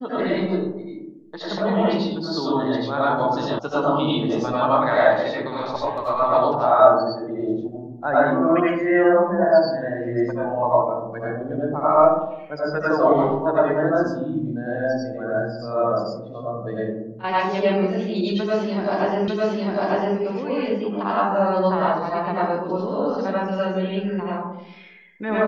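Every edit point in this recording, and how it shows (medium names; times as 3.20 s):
3.59 s: sound stops dead
19.28 s: repeat of the last 0.9 s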